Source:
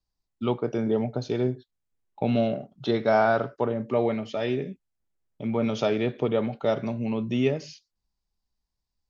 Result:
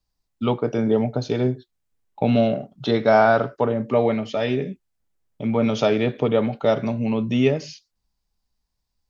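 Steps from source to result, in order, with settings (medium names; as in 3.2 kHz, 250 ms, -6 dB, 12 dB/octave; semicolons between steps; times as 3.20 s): band-stop 360 Hz, Q 12; trim +5.5 dB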